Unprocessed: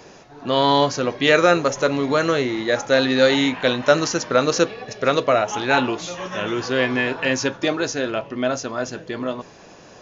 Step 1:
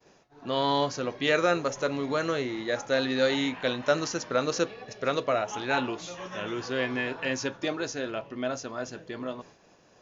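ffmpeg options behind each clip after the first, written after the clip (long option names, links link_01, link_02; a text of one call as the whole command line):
ffmpeg -i in.wav -af "agate=range=-33dB:threshold=-39dB:ratio=3:detection=peak,volume=-9dB" out.wav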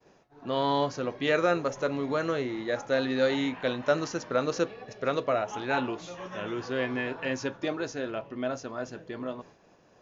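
ffmpeg -i in.wav -af "highshelf=frequency=2700:gain=-7.5" out.wav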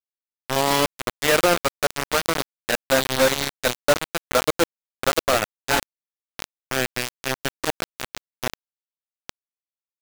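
ffmpeg -i in.wav -af "acrusher=bits=3:mix=0:aa=0.000001,volume=5.5dB" out.wav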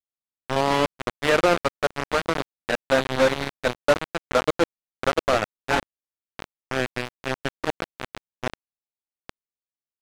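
ffmpeg -i in.wav -af "adynamicsmooth=sensitivity=1:basefreq=770" out.wav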